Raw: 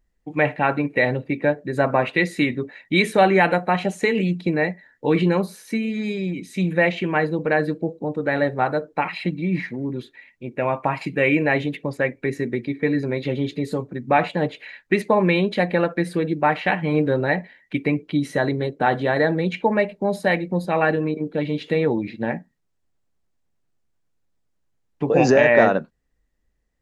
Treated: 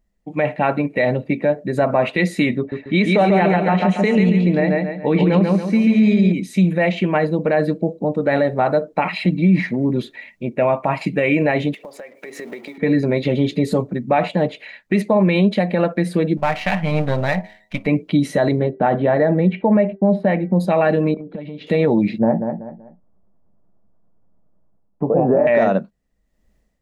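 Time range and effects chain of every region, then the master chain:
0:02.58–0:06.32: high-frequency loss of the air 90 metres + repeating echo 139 ms, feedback 40%, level −3.5 dB
0:11.74–0:12.78: mu-law and A-law mismatch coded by mu + Chebyshev high-pass filter 570 Hz + downward compressor 10 to 1, threshold −38 dBFS
0:16.37–0:17.87: gain on one half-wave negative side −7 dB + parametric band 350 Hz −12.5 dB 1.2 octaves + hum removal 105.8 Hz, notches 9
0:18.59–0:20.60: downward expander −44 dBFS + high-frequency loss of the air 490 metres + hum removal 390.3 Hz, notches 5
0:21.14–0:21.67: downward compressor 10 to 1, threshold −33 dBFS + high-frequency loss of the air 190 metres
0:22.18–0:25.47: low-pass filter 1,200 Hz 24 dB per octave + repeating echo 190 ms, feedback 26%, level −9 dB
whole clip: thirty-one-band graphic EQ 200 Hz +10 dB, 630 Hz +7 dB, 1,600 Hz −4 dB; automatic gain control; brickwall limiter −7 dBFS

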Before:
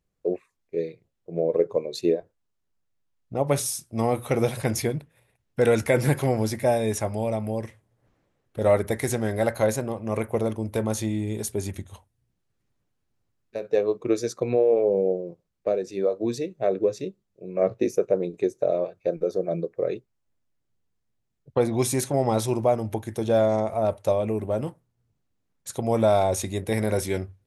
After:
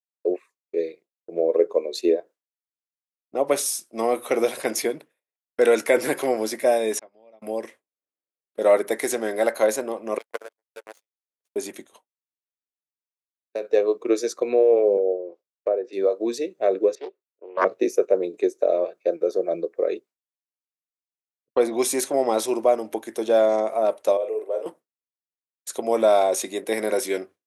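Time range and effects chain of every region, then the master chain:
0:06.99–0:07.42: downward expander −20 dBFS + low-pass filter 4,900 Hz 24 dB per octave + downward compressor 12 to 1, threshold −44 dBFS
0:10.18–0:11.56: variable-slope delta modulation 64 kbit/s + linear-phase brick-wall high-pass 420 Hz + power curve on the samples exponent 3
0:14.97–0:15.93: high-pass filter 380 Hz + treble cut that deepens with the level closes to 1,200 Hz, closed at −24.5 dBFS
0:16.95–0:17.65: high-pass filter 420 Hz 24 dB per octave + low-pass that shuts in the quiet parts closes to 1,600 Hz, open at −21 dBFS + highs frequency-modulated by the lows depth 0.79 ms
0:24.17–0:24.66: four-pole ladder high-pass 420 Hz, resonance 65% + double-tracking delay 44 ms −6 dB
whole clip: high-pass filter 290 Hz 24 dB per octave; downward expander −44 dBFS; notch filter 850 Hz, Q 13; level +3 dB

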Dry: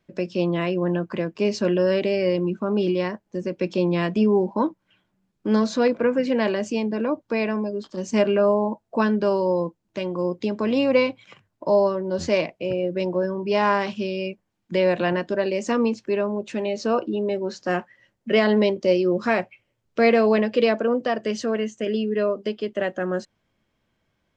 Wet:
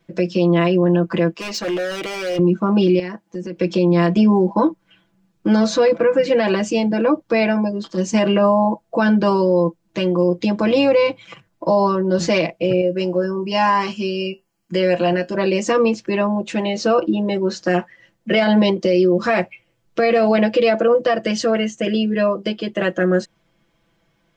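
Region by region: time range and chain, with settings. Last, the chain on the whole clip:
0:01.34–0:02.39: high-pass filter 700 Hz 6 dB per octave + hard clipping −28.5 dBFS
0:02.99–0:03.56: high-pass filter 140 Hz + parametric band 580 Hz −6 dB 0.3 octaves + downward compressor 4 to 1, threshold −34 dBFS
0:12.81–0:15.35: Butterworth band-reject 3,600 Hz, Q 6.9 + high-shelf EQ 5,900 Hz +9.5 dB + tuned comb filter 77 Hz, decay 0.16 s, harmonics odd
whole clip: comb filter 6 ms, depth 94%; boost into a limiter +12 dB; level −6.5 dB

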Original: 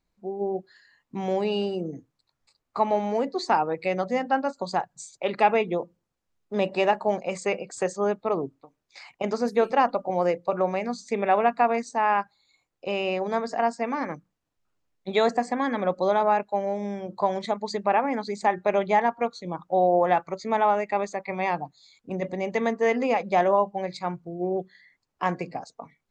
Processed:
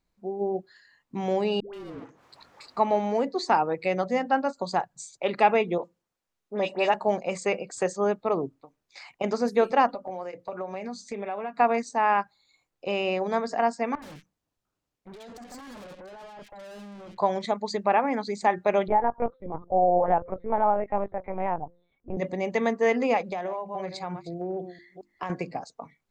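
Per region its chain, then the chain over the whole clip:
0:01.60–0:02.77: mid-hump overdrive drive 38 dB, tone 1,200 Hz, clips at −17.5 dBFS + downward compressor 4 to 1, threshold −42 dBFS + all-pass dispersion highs, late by 136 ms, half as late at 560 Hz
0:05.78–0:06.94: low-shelf EQ 240 Hz −10.5 dB + all-pass dispersion highs, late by 62 ms, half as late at 2,800 Hz
0:09.87–0:11.60: downward compressor 4 to 1, threshold −30 dBFS + notch comb filter 170 Hz
0:13.95–0:17.18: compressor whose output falls as the input rises −27 dBFS, ratio −0.5 + tube saturation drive 42 dB, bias 0.65 + multiband delay without the direct sound lows, highs 70 ms, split 1,900 Hz
0:18.88–0:22.17: low-pass filter 1,100 Hz + hum removal 174.1 Hz, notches 3 + linear-prediction vocoder at 8 kHz pitch kept
0:23.22–0:25.30: delay that plays each chunk backwards 224 ms, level −14 dB + mains-hum notches 50/100/150/200/250/300/350 Hz + downward compressor 16 to 1, threshold −27 dBFS
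whole clip: no processing

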